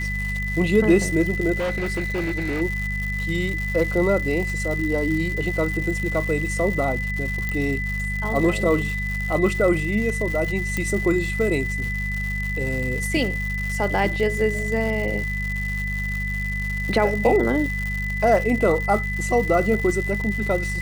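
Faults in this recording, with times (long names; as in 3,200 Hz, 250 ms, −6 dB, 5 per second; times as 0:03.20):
surface crackle 250 per second −28 dBFS
mains hum 50 Hz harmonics 4 −28 dBFS
whistle 2,000 Hz −27 dBFS
0:01.58–0:02.62: clipping −21 dBFS
0:07.49: click −13 dBFS
0:10.77: click −11 dBFS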